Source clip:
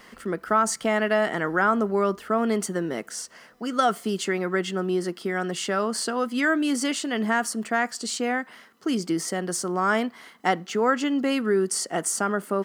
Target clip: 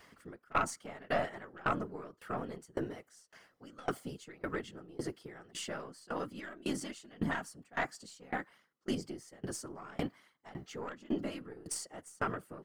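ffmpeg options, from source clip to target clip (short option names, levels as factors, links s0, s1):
-af "afftfilt=real='hypot(re,im)*cos(2*PI*random(0))':imag='hypot(re,im)*sin(2*PI*random(1))':win_size=512:overlap=0.75,aeval=exprs='0.211*(cos(1*acos(clip(val(0)/0.211,-1,1)))-cos(1*PI/2))+0.0841*(cos(2*acos(clip(val(0)/0.211,-1,1)))-cos(2*PI/2))+0.0188*(cos(5*acos(clip(val(0)/0.211,-1,1)))-cos(5*PI/2))+0.00841*(cos(7*acos(clip(val(0)/0.211,-1,1)))-cos(7*PI/2))':c=same,aeval=exprs='val(0)*pow(10,-25*if(lt(mod(1.8*n/s,1),2*abs(1.8)/1000),1-mod(1.8*n/s,1)/(2*abs(1.8)/1000),(mod(1.8*n/s,1)-2*abs(1.8)/1000)/(1-2*abs(1.8)/1000))/20)':c=same,volume=0.708"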